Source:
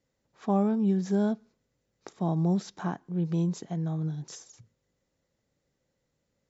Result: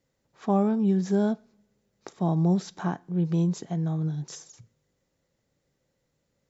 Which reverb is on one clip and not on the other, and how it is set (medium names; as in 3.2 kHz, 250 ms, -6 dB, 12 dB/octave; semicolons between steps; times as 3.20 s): two-slope reverb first 0.31 s, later 1.8 s, from -26 dB, DRR 19 dB; trim +2.5 dB